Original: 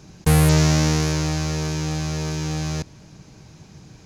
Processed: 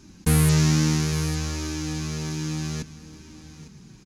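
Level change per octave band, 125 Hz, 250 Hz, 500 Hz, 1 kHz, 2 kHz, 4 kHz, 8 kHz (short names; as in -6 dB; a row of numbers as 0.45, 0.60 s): -3.0, -2.0, -7.0, -7.0, -4.0, -3.5, -1.5 dB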